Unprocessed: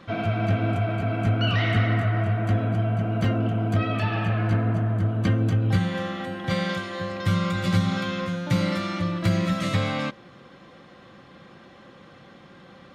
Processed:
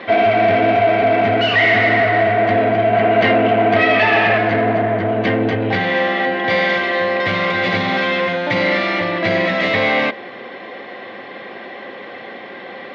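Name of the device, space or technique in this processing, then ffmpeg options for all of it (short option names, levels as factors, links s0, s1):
overdrive pedal into a guitar cabinet: -filter_complex "[0:a]asplit=2[s0][s1];[s1]highpass=f=720:p=1,volume=15.8,asoftclip=type=tanh:threshold=0.335[s2];[s0][s2]amix=inputs=2:normalize=0,lowpass=f=2900:p=1,volume=0.501,highpass=110,equalizer=f=160:t=q:w=4:g=-9,equalizer=f=240:t=q:w=4:g=4,equalizer=f=420:t=q:w=4:g=9,equalizer=f=690:t=q:w=4:g=7,equalizer=f=1300:t=q:w=4:g=-8,equalizer=f=2000:t=q:w=4:g=9,lowpass=f=4500:w=0.5412,lowpass=f=4500:w=1.3066,asettb=1/sr,asplit=3[s3][s4][s5];[s3]atrim=end=2.934[s6];[s4]atrim=start=2.93:end=4.38,asetpts=PTS-STARTPTS,afade=t=in:d=0.004:c=qsin,afade=t=out:st=1.446:d=0.004:c=qsin,equalizer=f=1900:w=0.54:g=4.5[s7];[s5]atrim=start=4.376[s8];[s6][s7]acrossfade=d=0.004:c1=hsin:c2=qsin[s9];[s9][s8]acrossfade=d=0.004:c1=qsin:c2=hsin"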